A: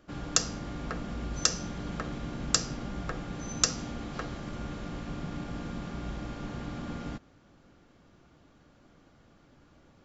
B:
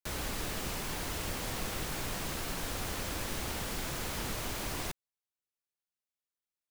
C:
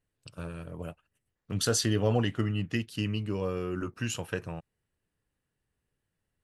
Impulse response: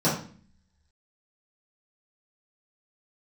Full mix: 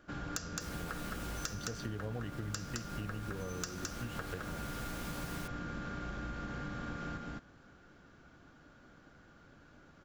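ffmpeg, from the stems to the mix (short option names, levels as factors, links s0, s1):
-filter_complex "[0:a]equalizer=f=1500:t=o:w=0.34:g=10.5,asoftclip=type=tanh:threshold=0.316,volume=0.75,asplit=2[s0][s1];[s1]volume=0.668[s2];[1:a]asplit=2[s3][s4];[s4]adelay=11.5,afreqshift=-0.95[s5];[s3][s5]amix=inputs=2:normalize=1,adelay=550,volume=0.841[s6];[2:a]lowshelf=f=81:g=9.5,adynamicsmooth=sensitivity=1.5:basefreq=2200,volume=0.596,asplit=2[s7][s8];[s8]apad=whole_len=320232[s9];[s6][s9]sidechaincompress=threshold=0.0251:ratio=8:attack=6.3:release=973[s10];[s2]aecho=0:1:214:1[s11];[s0][s10][s7][s11]amix=inputs=4:normalize=0,acompressor=threshold=0.0141:ratio=6"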